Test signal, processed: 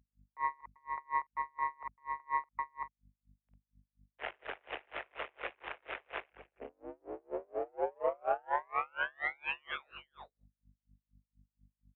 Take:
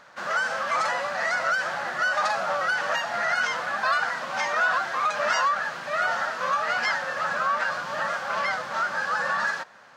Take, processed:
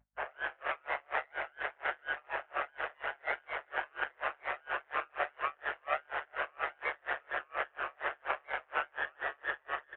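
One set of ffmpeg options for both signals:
-filter_complex "[0:a]asplit=2[s0][s1];[s1]adelay=49,volume=0.251[s2];[s0][s2]amix=inputs=2:normalize=0,acrossover=split=1400[s3][s4];[s3]tiltshelf=f=970:g=4.5[s5];[s4]dynaudnorm=f=270:g=3:m=4.47[s6];[s5][s6]amix=inputs=2:normalize=0,asplit=2[s7][s8];[s8]adelay=390.7,volume=0.398,highshelf=f=4000:g=-8.79[s9];[s7][s9]amix=inputs=2:normalize=0,afftdn=nr=23:nf=-37,acompressor=threshold=0.0501:ratio=10,aeval=exprs='val(0)*sin(2*PI*72*n/s)':c=same,aresample=8000,aeval=exprs='max(val(0),0)':c=same,aresample=44100,highpass=f=340:t=q:w=0.5412,highpass=f=340:t=q:w=1.307,lowpass=f=2600:t=q:w=0.5176,lowpass=f=2600:t=q:w=0.7071,lowpass=f=2600:t=q:w=1.932,afreqshift=67,equalizer=f=660:t=o:w=1.4:g=7.5,aeval=exprs='val(0)+0.000631*(sin(2*PI*50*n/s)+sin(2*PI*2*50*n/s)/2+sin(2*PI*3*50*n/s)/3+sin(2*PI*4*50*n/s)/4+sin(2*PI*5*50*n/s)/5)':c=same,aeval=exprs='val(0)*pow(10,-36*(0.5-0.5*cos(2*PI*4.2*n/s))/20)':c=same,volume=1.58"

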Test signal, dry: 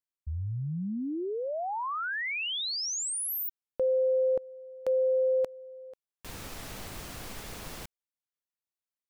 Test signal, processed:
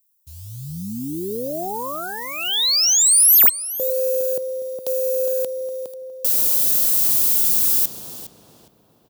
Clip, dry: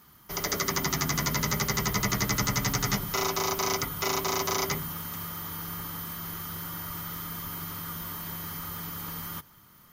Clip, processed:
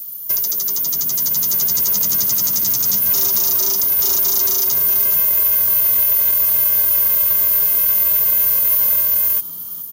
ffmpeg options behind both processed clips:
-filter_complex "[0:a]acrossover=split=690|1800[s0][s1][s2];[s2]crystalizer=i=0.5:c=0[s3];[s0][s1][s3]amix=inputs=3:normalize=0,acrusher=bits=7:mode=log:mix=0:aa=0.000001,aexciter=amount=12.5:drive=3.9:freq=3100,acompressor=threshold=0.316:ratio=6:attack=8:release=923:knee=1:detection=rms,equalizer=f=3900:w=0.34:g=-12.5,dynaudnorm=f=320:g=7:m=1.78,highpass=140,asplit=2[s4][s5];[s5]adelay=411,lowpass=f=2300:p=1,volume=0.562,asplit=2[s6][s7];[s7]adelay=411,lowpass=f=2300:p=1,volume=0.45,asplit=2[s8][s9];[s9]adelay=411,lowpass=f=2300:p=1,volume=0.45,asplit=2[s10][s11];[s11]adelay=411,lowpass=f=2300:p=1,volume=0.45,asplit=2[s12][s13];[s13]adelay=411,lowpass=f=2300:p=1,volume=0.45,asplit=2[s14][s15];[s15]adelay=411,lowpass=f=2300:p=1,volume=0.45[s16];[s6][s8][s10][s12][s14][s16]amix=inputs=6:normalize=0[s17];[s4][s17]amix=inputs=2:normalize=0,asoftclip=type=tanh:threshold=0.266,volume=1.41"

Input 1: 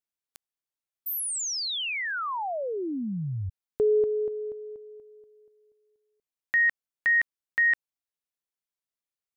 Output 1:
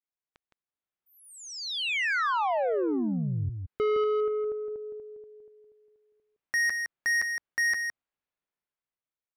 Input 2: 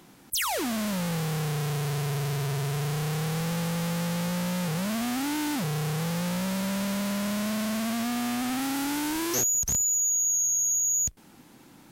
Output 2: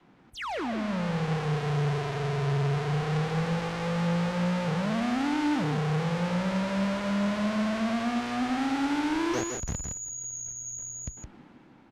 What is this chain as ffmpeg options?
-filter_complex "[0:a]lowpass=2400,adynamicequalizer=threshold=0.00708:dfrequency=150:dqfactor=0.74:tfrequency=150:tqfactor=0.74:attack=5:release=100:ratio=0.375:range=2.5:mode=cutabove:tftype=bell,dynaudnorm=f=210:g=9:m=3.16,asoftclip=type=tanh:threshold=0.1,asplit=2[s0][s1];[s1]aecho=0:1:164:0.501[s2];[s0][s2]amix=inputs=2:normalize=0,volume=0.631"

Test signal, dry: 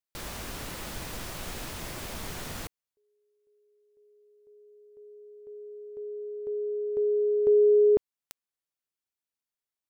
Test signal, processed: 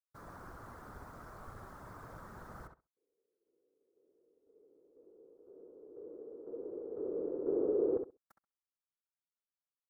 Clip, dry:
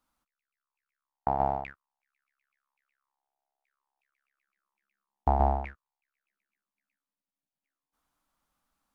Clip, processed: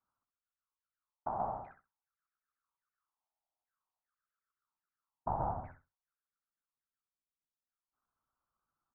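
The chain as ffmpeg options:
-filter_complex "[0:a]afftfilt=real='hypot(re,im)*cos(2*PI*random(0))':imag='hypot(re,im)*sin(2*PI*random(1))':win_size=512:overlap=0.75,highshelf=f=1900:t=q:w=3:g=-12.5,asplit=2[s0][s1];[s1]adelay=66,lowpass=f=2400:p=1,volume=0.473,asplit=2[s2][s3];[s3]adelay=66,lowpass=f=2400:p=1,volume=0.16,asplit=2[s4][s5];[s5]adelay=66,lowpass=f=2400:p=1,volume=0.16[s6];[s0][s2][s4][s6]amix=inputs=4:normalize=0,volume=0.447"

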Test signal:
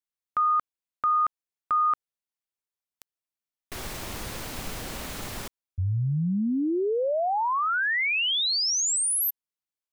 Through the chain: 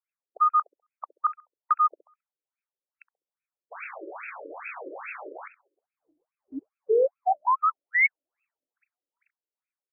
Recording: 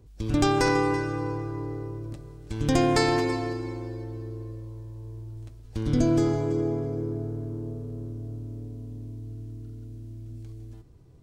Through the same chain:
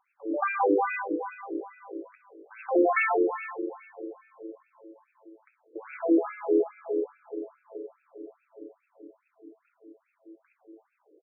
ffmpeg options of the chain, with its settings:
-filter_complex "[0:a]asplit=2[s0][s1];[s1]adelay=67,lowpass=f=940:p=1,volume=0.316,asplit=2[s2][s3];[s3]adelay=67,lowpass=f=940:p=1,volume=0.35,asplit=2[s4][s5];[s5]adelay=67,lowpass=f=940:p=1,volume=0.35,asplit=2[s6][s7];[s7]adelay=67,lowpass=f=940:p=1,volume=0.35[s8];[s0][s2][s4][s6][s8]amix=inputs=5:normalize=0,aexciter=amount=9:drive=7.2:freq=2900,afftfilt=real='re*between(b*sr/1024,400*pow(1900/400,0.5+0.5*sin(2*PI*2.4*pts/sr))/1.41,400*pow(1900/400,0.5+0.5*sin(2*PI*2.4*pts/sr))*1.41)':imag='im*between(b*sr/1024,400*pow(1900/400,0.5+0.5*sin(2*PI*2.4*pts/sr))/1.41,400*pow(1900/400,0.5+0.5*sin(2*PI*2.4*pts/sr))*1.41)':win_size=1024:overlap=0.75,volume=1.88"

